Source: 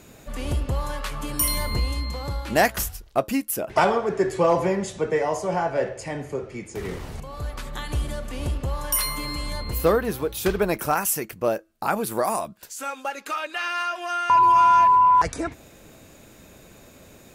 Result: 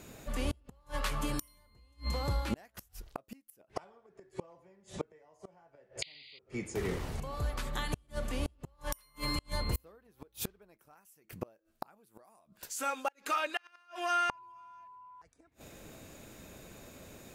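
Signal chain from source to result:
sound drawn into the spectrogram noise, 0:06.02–0:06.39, 1,900–4,900 Hz −16 dBFS
gate with flip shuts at −18 dBFS, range −35 dB
level −3 dB

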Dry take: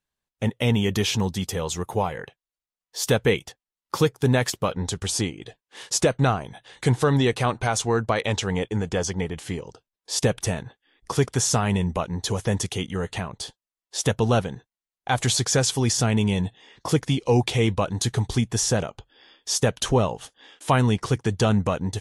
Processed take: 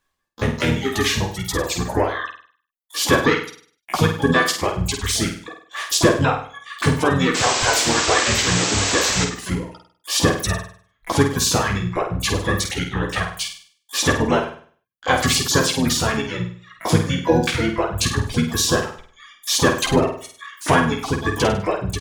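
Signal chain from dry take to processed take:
in parallel at +3 dB: downward compressor 16 to 1, threshold −34 dBFS, peak gain reduction 21 dB
on the sum: reverb reduction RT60 1.5 s
double-tracking delay 12 ms −4.5 dB
reverb reduction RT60 1.9 s
parametric band 1,700 Hz +10.5 dB 0.27 octaves
pitch-shifted copies added −7 semitones −2 dB, +12 semitones −12 dB
sound drawn into the spectrogram noise, 0:07.34–0:09.25, 220–8,200 Hz −22 dBFS
on a send: flutter between parallel walls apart 8.6 metres, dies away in 0.47 s
on the sum: level −1 dB

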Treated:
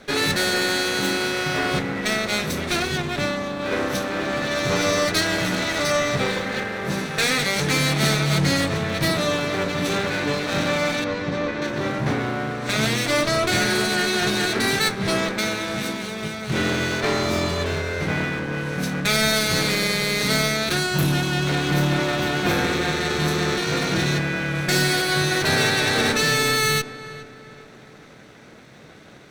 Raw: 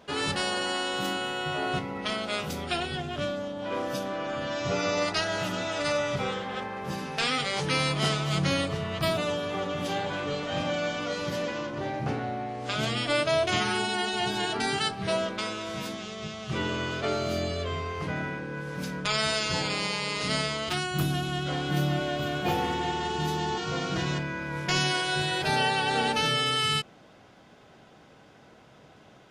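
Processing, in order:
lower of the sound and its delayed copy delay 0.51 ms
low-shelf EQ 80 Hz −8 dB
in parallel at −7 dB: wave folding −26.5 dBFS
0:11.04–0:11.62: on the sum: head-to-tape spacing loss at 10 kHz 22 dB
on a send: feedback echo with a low-pass in the loop 414 ms, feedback 45%, low-pass 2,300 Hz, level −15 dB
on the sum: level +6.5 dB

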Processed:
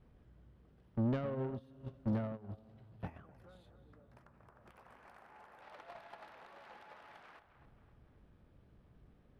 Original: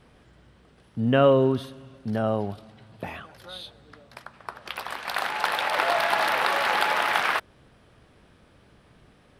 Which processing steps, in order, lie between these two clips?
downward compressor 20 to 1, threshold −36 dBFS, peak gain reduction 23.5 dB
spectral tilt −3 dB per octave
tape delay 263 ms, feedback 52%, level −12 dB, low-pass 4,600 Hz
tube saturation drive 35 dB, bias 0.2
0:03.07–0:05.62: parametric band 3,800 Hz −10.5 dB 1 octave
noise gate −38 dBFS, range −25 dB
level +10 dB

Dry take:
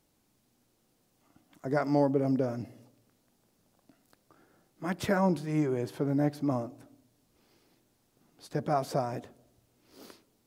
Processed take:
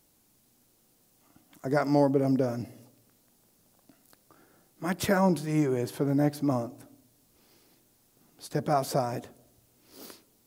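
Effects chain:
high-shelf EQ 6,800 Hz +10 dB
level +2.5 dB

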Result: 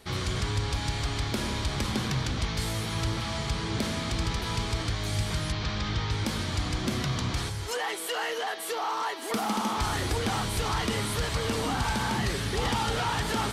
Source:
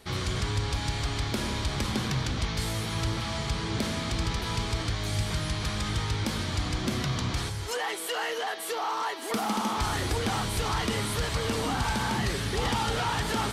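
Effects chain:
0:05.52–0:06.11: low-pass filter 5,700 Hz 24 dB per octave

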